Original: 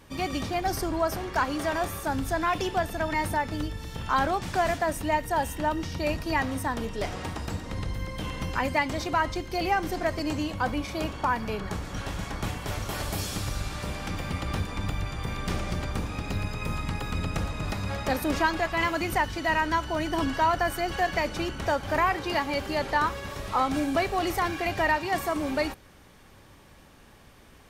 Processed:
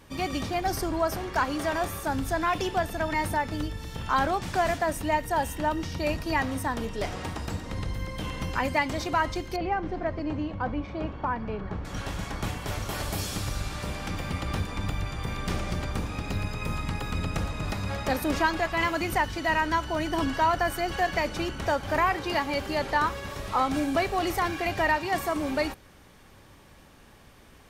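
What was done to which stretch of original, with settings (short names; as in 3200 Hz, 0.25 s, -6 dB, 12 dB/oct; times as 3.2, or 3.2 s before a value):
9.56–11.85 tape spacing loss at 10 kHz 34 dB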